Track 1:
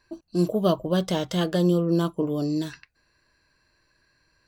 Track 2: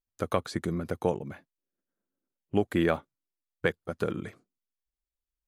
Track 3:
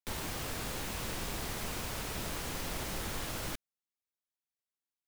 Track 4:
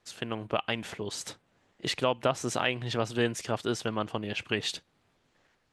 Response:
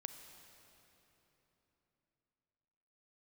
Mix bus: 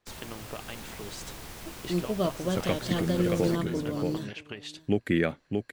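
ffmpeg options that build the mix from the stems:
-filter_complex "[0:a]adelay=1550,volume=-6.5dB,asplit=2[link_01][link_02];[link_02]volume=-20.5dB[link_03];[1:a]equalizer=frequency=125:width_type=o:width=1:gain=10,equalizer=frequency=250:width_type=o:width=1:gain=7,equalizer=frequency=500:width_type=o:width=1:gain=5,equalizer=frequency=1000:width_type=o:width=1:gain=-6,equalizer=frequency=2000:width_type=o:width=1:gain=12,equalizer=frequency=4000:width_type=o:width=1:gain=4,equalizer=frequency=8000:width_type=o:width=1:gain=4,adelay=2350,volume=-7.5dB,asplit=2[link_04][link_05];[link_05]volume=-4dB[link_06];[2:a]volume=-5.5dB,asplit=2[link_07][link_08];[link_08]volume=-7.5dB[link_09];[3:a]acompressor=threshold=-32dB:ratio=6,volume=-4.5dB[link_10];[link_03][link_06][link_09]amix=inputs=3:normalize=0,aecho=0:1:627:1[link_11];[link_01][link_04][link_07][link_10][link_11]amix=inputs=5:normalize=0"

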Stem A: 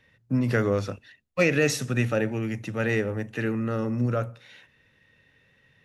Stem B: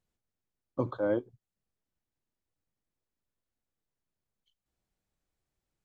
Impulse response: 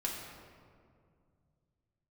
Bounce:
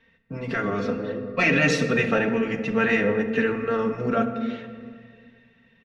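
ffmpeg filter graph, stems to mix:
-filter_complex "[0:a]aecho=1:1:4.4:0.86,volume=-4dB,asplit=3[link_01][link_02][link_03];[link_02]volume=-5.5dB[link_04];[1:a]acompressor=threshold=-31dB:ratio=6,volume=-2dB[link_05];[link_03]apad=whole_len=257660[link_06];[link_05][link_06]sidechaincompress=threshold=-27dB:ratio=8:attack=16:release=1280[link_07];[2:a]atrim=start_sample=2205[link_08];[link_04][link_08]afir=irnorm=-1:irlink=0[link_09];[link_01][link_07][link_09]amix=inputs=3:normalize=0,lowpass=3600,afftfilt=real='re*lt(hypot(re,im),0.562)':imag='im*lt(hypot(re,im),0.562)':win_size=1024:overlap=0.75,dynaudnorm=framelen=220:gausssize=9:maxgain=6dB"

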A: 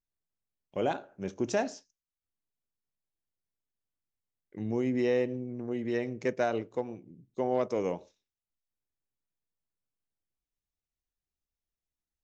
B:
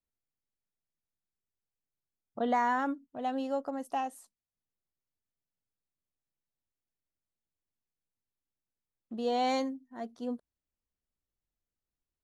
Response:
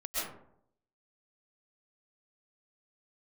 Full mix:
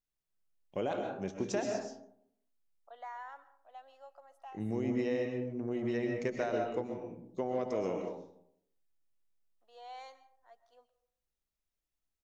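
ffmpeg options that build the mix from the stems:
-filter_complex "[0:a]acompressor=threshold=-29dB:ratio=6,volume=-4dB,asplit=2[link_01][link_02];[link_02]volume=-4dB[link_03];[1:a]highpass=frequency=630:width=0.5412,highpass=frequency=630:width=1.3066,highshelf=frequency=6700:gain=-8.5,adelay=500,volume=-16dB,asplit=2[link_04][link_05];[link_05]volume=-19dB[link_06];[2:a]atrim=start_sample=2205[link_07];[link_03][link_06]amix=inputs=2:normalize=0[link_08];[link_08][link_07]afir=irnorm=-1:irlink=0[link_09];[link_01][link_04][link_09]amix=inputs=3:normalize=0"

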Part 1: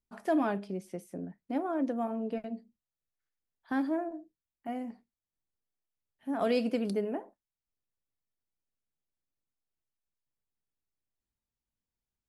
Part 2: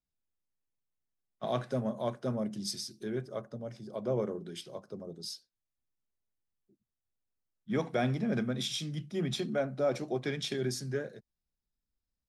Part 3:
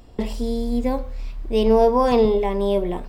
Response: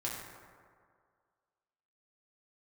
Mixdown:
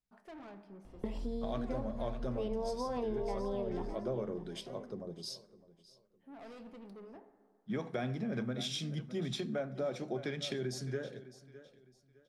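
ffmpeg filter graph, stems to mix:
-filter_complex "[0:a]highshelf=frequency=5400:gain=-10,asoftclip=type=tanh:threshold=-33.5dB,volume=-16dB,asplit=2[link_01][link_02];[link_02]volume=-8dB[link_03];[1:a]highshelf=frequency=9000:gain=-8.5,volume=-1dB,asplit=3[link_04][link_05][link_06];[link_05]volume=-22dB[link_07];[link_06]volume=-19dB[link_08];[2:a]aemphasis=mode=reproduction:type=75kf,adelay=850,volume=-8.5dB,asplit=2[link_09][link_10];[link_10]volume=-19dB[link_11];[link_04][link_09]amix=inputs=2:normalize=0,acompressor=threshold=-34dB:ratio=6,volume=0dB[link_12];[3:a]atrim=start_sample=2205[link_13];[link_03][link_07]amix=inputs=2:normalize=0[link_14];[link_14][link_13]afir=irnorm=-1:irlink=0[link_15];[link_08][link_11]amix=inputs=2:normalize=0,aecho=0:1:608|1216|1824|2432:1|0.28|0.0784|0.022[link_16];[link_01][link_12][link_15][link_16]amix=inputs=4:normalize=0"

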